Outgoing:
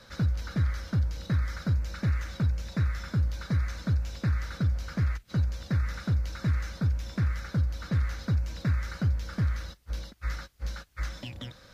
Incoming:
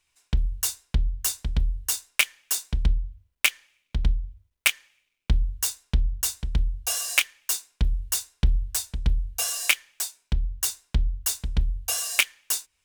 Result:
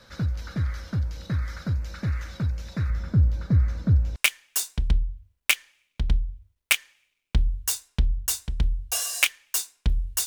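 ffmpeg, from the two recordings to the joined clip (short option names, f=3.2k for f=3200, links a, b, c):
-filter_complex "[0:a]asettb=1/sr,asplit=3[a][b][c];[a]atrim=end=2.904[d];[b]atrim=start=2.9:end=4.16,asetpts=PTS-STARTPTS,afade=t=in:d=0.004:c=qsin,afade=t=out:st=1.256:d=0.004:c=qsin,tiltshelf=f=760:g=7.5[e];[c]atrim=start=4.156[f];[d][e]acrossfade=d=0.004:c1=hsin:c2=qsin[g];[g][f]acrossfade=d=0.004:c1=qsin:c2=hsin,apad=whole_dur=10.26,atrim=end=10.26,atrim=end=4.162[h];[1:a]atrim=start=2.108:end=8.21[i];[h][i]acrossfade=d=0.004:c1=hsin:c2=hsin"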